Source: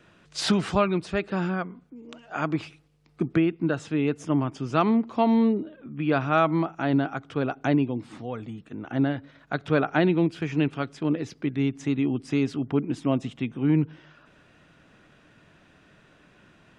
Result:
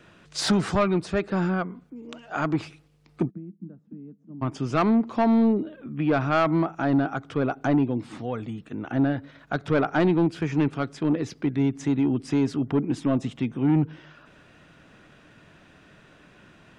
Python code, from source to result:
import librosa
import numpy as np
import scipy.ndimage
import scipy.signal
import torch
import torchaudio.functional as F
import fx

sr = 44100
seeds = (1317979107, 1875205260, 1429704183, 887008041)

y = fx.dynamic_eq(x, sr, hz=2900.0, q=1.7, threshold_db=-48.0, ratio=4.0, max_db=-6)
y = fx.auto_wah(y, sr, base_hz=200.0, top_hz=3800.0, q=15.0, full_db=-27.0, direction='down', at=(3.29, 4.41), fade=0.02)
y = 10.0 ** (-17.5 / 20.0) * np.tanh(y / 10.0 ** (-17.5 / 20.0))
y = F.gain(torch.from_numpy(y), 3.5).numpy()